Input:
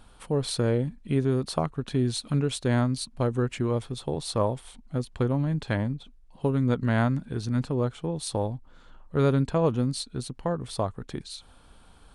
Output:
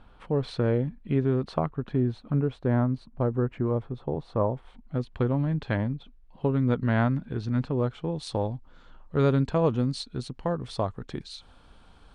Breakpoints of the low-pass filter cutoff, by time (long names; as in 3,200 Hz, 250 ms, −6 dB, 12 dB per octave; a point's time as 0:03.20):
0:01.50 2,600 Hz
0:02.16 1,300 Hz
0:04.52 1,300 Hz
0:04.98 3,300 Hz
0:07.71 3,300 Hz
0:08.47 5,500 Hz